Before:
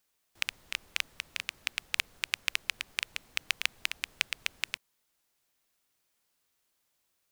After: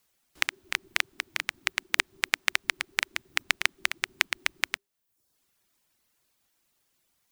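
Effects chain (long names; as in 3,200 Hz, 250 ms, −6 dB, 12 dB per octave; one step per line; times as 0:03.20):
frequency shifter −400 Hz
reverb reduction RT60 0.68 s
level +5.5 dB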